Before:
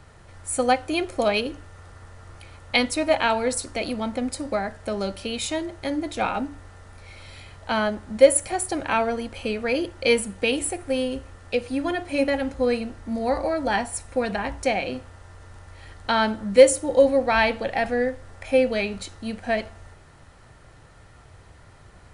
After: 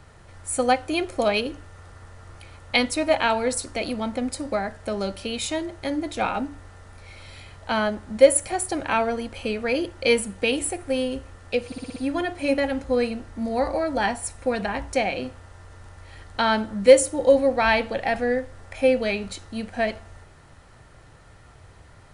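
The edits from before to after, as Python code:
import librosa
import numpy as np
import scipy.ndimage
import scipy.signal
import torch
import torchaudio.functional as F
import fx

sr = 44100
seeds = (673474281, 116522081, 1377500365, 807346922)

y = fx.edit(x, sr, fx.stutter(start_s=11.66, slice_s=0.06, count=6), tone=tone)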